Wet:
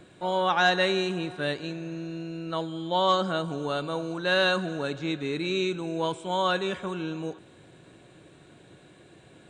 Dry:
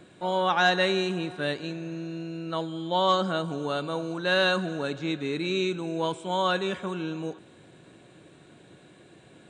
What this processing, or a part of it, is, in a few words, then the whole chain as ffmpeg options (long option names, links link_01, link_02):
low shelf boost with a cut just above: -af "lowshelf=frequency=66:gain=8,equalizer=frequency=210:width_type=o:width=0.81:gain=-2.5"